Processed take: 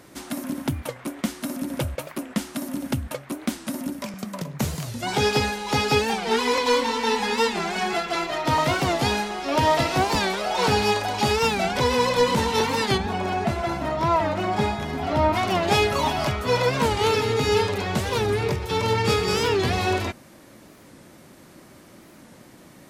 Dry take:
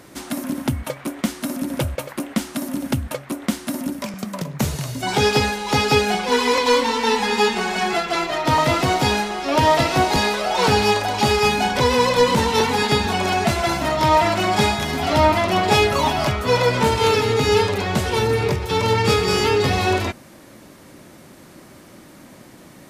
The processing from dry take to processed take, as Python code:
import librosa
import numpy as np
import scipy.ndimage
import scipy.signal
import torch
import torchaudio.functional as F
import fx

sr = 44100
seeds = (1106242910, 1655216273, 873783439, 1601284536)

y = fx.high_shelf(x, sr, hz=2400.0, db=-11.5, at=(12.97, 15.33), fade=0.02)
y = fx.record_warp(y, sr, rpm=45.0, depth_cents=160.0)
y = F.gain(torch.from_numpy(y), -4.0).numpy()